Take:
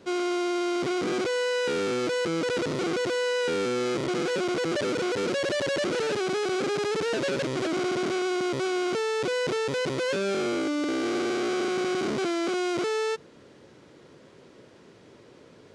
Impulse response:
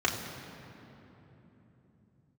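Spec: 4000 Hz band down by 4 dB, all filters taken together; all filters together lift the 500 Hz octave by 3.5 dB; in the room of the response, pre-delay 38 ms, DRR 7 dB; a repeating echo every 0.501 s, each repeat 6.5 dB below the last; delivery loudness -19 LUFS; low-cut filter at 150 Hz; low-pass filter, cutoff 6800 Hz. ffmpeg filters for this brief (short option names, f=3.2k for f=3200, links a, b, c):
-filter_complex "[0:a]highpass=150,lowpass=6.8k,equalizer=f=500:t=o:g=4.5,equalizer=f=4k:t=o:g=-5,aecho=1:1:501|1002|1503|2004|2505|3006:0.473|0.222|0.105|0.0491|0.0231|0.0109,asplit=2[a][b];[1:a]atrim=start_sample=2205,adelay=38[c];[b][c]afir=irnorm=-1:irlink=0,volume=-18.5dB[d];[a][d]amix=inputs=2:normalize=0,volume=4dB"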